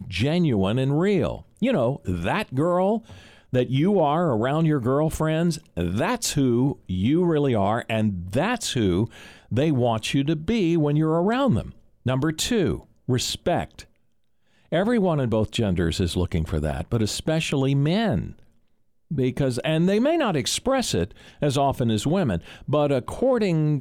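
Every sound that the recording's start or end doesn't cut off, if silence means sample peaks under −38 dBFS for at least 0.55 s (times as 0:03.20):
0:14.72–0:18.39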